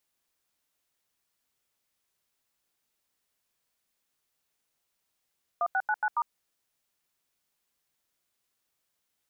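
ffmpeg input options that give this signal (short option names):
-f lavfi -i "aevalsrc='0.0473*clip(min(mod(t,0.139),0.054-mod(t,0.139))/0.002,0,1)*(eq(floor(t/0.139),0)*(sin(2*PI*697*mod(t,0.139))+sin(2*PI*1209*mod(t,0.139)))+eq(floor(t/0.139),1)*(sin(2*PI*770*mod(t,0.139))+sin(2*PI*1477*mod(t,0.139)))+eq(floor(t/0.139),2)*(sin(2*PI*852*mod(t,0.139))+sin(2*PI*1477*mod(t,0.139)))+eq(floor(t/0.139),3)*(sin(2*PI*852*mod(t,0.139))+sin(2*PI*1477*mod(t,0.139)))+eq(floor(t/0.139),4)*(sin(2*PI*941*mod(t,0.139))+sin(2*PI*1209*mod(t,0.139))))':d=0.695:s=44100"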